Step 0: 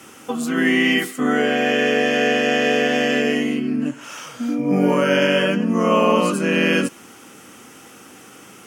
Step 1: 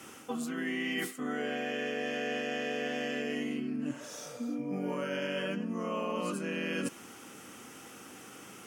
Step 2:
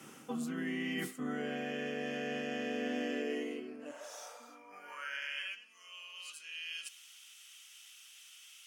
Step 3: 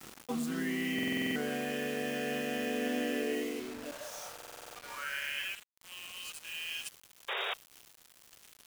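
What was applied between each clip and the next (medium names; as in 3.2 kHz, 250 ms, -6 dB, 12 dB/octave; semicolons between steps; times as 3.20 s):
spectral replace 3.97–4.52 s, 430–3300 Hz both; reverse; compression 6:1, threshold -26 dBFS, peak gain reduction 13.5 dB; reverse; trim -6 dB
high-pass sweep 150 Hz -> 3.2 kHz, 2.38–5.85 s; trim -5 dB
word length cut 8-bit, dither none; painted sound noise, 7.28–7.54 s, 370–3800 Hz -38 dBFS; buffer glitch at 0.94/4.34 s, samples 2048, times 8; trim +3 dB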